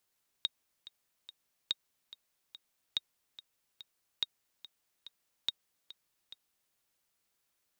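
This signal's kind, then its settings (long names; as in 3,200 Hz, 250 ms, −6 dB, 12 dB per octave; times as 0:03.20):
click track 143 BPM, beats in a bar 3, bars 5, 3,750 Hz, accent 17.5 dB −17 dBFS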